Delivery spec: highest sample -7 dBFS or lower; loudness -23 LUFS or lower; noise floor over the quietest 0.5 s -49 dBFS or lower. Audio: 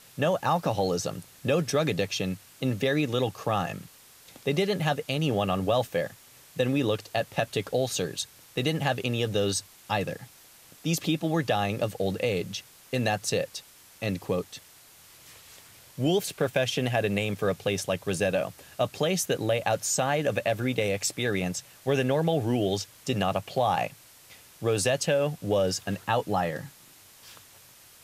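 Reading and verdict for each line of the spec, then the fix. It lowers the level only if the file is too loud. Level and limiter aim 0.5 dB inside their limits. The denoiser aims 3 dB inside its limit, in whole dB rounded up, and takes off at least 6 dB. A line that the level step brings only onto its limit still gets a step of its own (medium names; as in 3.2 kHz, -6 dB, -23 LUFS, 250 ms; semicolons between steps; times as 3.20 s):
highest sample -9.0 dBFS: pass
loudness -28.0 LUFS: pass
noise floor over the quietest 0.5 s -54 dBFS: pass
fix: none needed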